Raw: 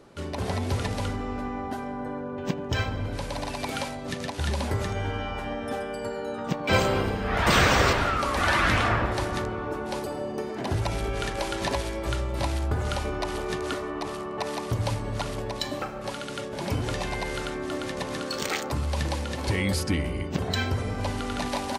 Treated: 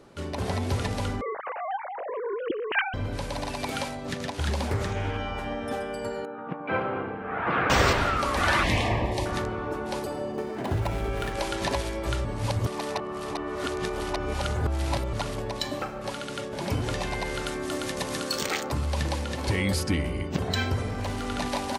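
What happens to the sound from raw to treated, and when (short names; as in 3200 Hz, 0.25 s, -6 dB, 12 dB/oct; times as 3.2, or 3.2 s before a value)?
1.21–2.94 sine-wave speech
4.05–5.17 Doppler distortion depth 0.29 ms
6.25–7.7 speaker cabinet 210–2000 Hz, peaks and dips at 220 Hz -7 dB, 390 Hz -5 dB, 600 Hz -7 dB, 1000 Hz -4 dB, 1900 Hz -7 dB
8.63–9.26 Butterworth band-stop 1400 Hz, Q 1.6
10.32–11.33 median filter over 9 samples
12.25–15.13 reverse
17.46–18.42 high shelf 5700 Hz +10.5 dB
20.87–21.27 overloaded stage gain 26.5 dB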